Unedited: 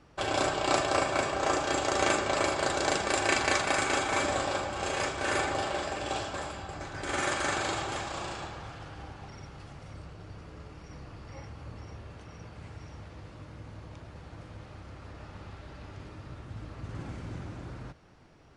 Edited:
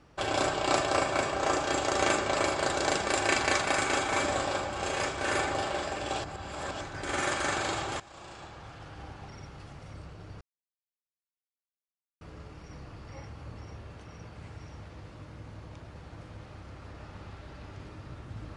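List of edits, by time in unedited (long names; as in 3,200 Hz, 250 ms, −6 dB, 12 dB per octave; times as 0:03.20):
0:06.24–0:06.81: reverse
0:08.00–0:09.11: fade in, from −18 dB
0:10.41: splice in silence 1.80 s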